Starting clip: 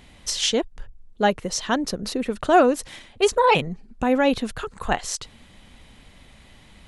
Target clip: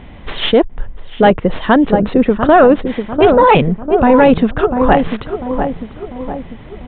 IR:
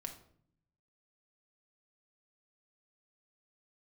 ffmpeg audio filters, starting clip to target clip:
-filter_complex "[0:a]equalizer=f=3.1k:t=o:w=2.3:g=-6.5,asplit=2[a][b];[b]adelay=696,lowpass=f=1.1k:p=1,volume=-9dB,asplit=2[c][d];[d]adelay=696,lowpass=f=1.1k:p=1,volume=0.53,asplit=2[e][f];[f]adelay=696,lowpass=f=1.1k:p=1,volume=0.53,asplit=2[g][h];[h]adelay=696,lowpass=f=1.1k:p=1,volume=0.53,asplit=2[i][j];[j]adelay=696,lowpass=f=1.1k:p=1,volume=0.53,asplit=2[k][l];[l]adelay=696,lowpass=f=1.1k:p=1,volume=0.53[m];[a][c][e][g][i][k][m]amix=inputs=7:normalize=0,acrossover=split=2700[n][o];[o]aeval=exprs='max(val(0),0)':c=same[p];[n][p]amix=inputs=2:normalize=0,apsyclip=18dB,aresample=8000,aresample=44100,volume=-2.5dB"

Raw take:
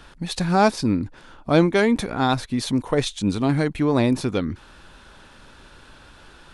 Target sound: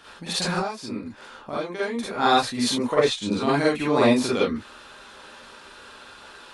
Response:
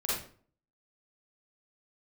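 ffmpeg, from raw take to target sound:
-filter_complex "[0:a]highpass=f=470:p=1,asettb=1/sr,asplit=3[a][b][c];[a]atrim=end=0.544[d];[b]atrim=start=0.54:end=2.18,asetpts=PTS-STARTPTS,afade=t=in:d=0.004:c=qsin,afade=t=out:st=1.636:d=0.004:c=qsin,acompressor=threshold=-32dB:ratio=8[e];[c]atrim=start=2.176[f];[d][e]acrossfade=d=0.004:c1=hsin:c2=qsin[g];[g][f]acrossfade=d=0.004:c1=qsin:c2=hsin,asettb=1/sr,asplit=3[h][i][j];[h]atrim=end=2.874[k];[i]atrim=start=2.87:end=3.42,asetpts=PTS-STARTPTS,afade=t=in:d=0.004:c=qsin,afade=t=out:st=0.546:d=0.004:c=qsin,highshelf=f=4.9k:g=-10[l];[j]atrim=start=3.416[m];[k][l]acrossfade=d=0.004:c1=hsin:c2=qsin[n];[n][m]acrossfade=d=0.004:c1=qsin:c2=hsin[o];[1:a]atrim=start_sample=2205,afade=t=out:st=0.13:d=0.01,atrim=end_sample=6174[p];[o][p]afir=irnorm=-1:irlink=0"

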